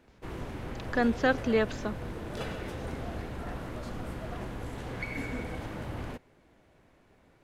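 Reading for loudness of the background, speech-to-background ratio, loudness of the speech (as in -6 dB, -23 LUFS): -39.0 LUFS, 10.0 dB, -29.0 LUFS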